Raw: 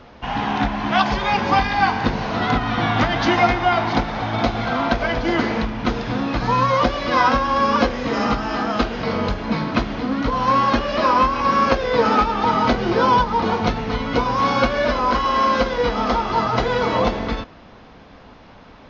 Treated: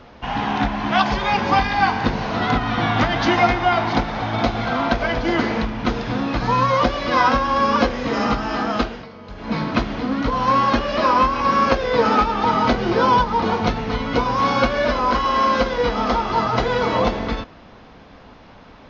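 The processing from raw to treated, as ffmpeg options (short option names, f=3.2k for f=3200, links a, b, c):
-filter_complex "[0:a]asplit=3[a][b][c];[a]atrim=end=9.08,asetpts=PTS-STARTPTS,afade=t=out:st=8.77:d=0.31:silence=0.125893[d];[b]atrim=start=9.08:end=9.28,asetpts=PTS-STARTPTS,volume=-18dB[e];[c]atrim=start=9.28,asetpts=PTS-STARTPTS,afade=t=in:d=0.31:silence=0.125893[f];[d][e][f]concat=n=3:v=0:a=1"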